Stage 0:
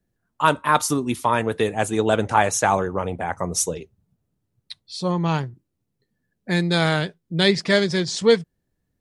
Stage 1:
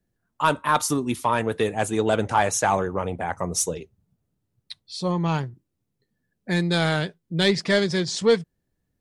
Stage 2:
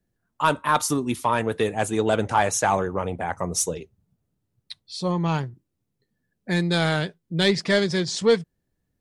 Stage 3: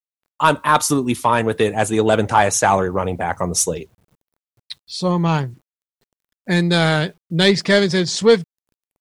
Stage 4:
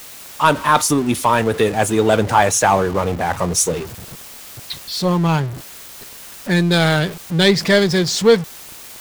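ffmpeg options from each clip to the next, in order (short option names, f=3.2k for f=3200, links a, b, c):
-af "acontrast=45,volume=-7dB"
-af anull
-af "acrusher=bits=10:mix=0:aa=0.000001,volume=6dB"
-af "aeval=exprs='val(0)+0.5*0.0562*sgn(val(0))':c=same"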